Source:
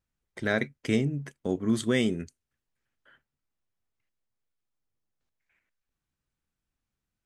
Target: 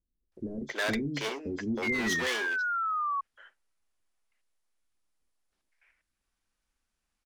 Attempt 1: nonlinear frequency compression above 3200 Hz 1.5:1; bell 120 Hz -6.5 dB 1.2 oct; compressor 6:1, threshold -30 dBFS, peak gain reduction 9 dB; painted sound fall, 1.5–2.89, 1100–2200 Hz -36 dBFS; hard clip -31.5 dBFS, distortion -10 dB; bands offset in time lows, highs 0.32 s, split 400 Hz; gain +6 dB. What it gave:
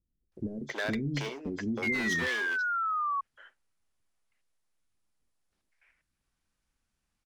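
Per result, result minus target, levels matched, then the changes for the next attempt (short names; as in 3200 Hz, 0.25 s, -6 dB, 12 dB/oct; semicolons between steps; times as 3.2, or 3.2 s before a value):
compressor: peak gain reduction +9 dB; 125 Hz band +4.0 dB
remove: compressor 6:1, threshold -30 dBFS, peak gain reduction 9 dB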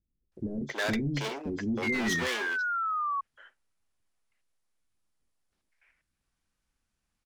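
125 Hz band +5.0 dB
change: bell 120 Hz -17.5 dB 1.2 oct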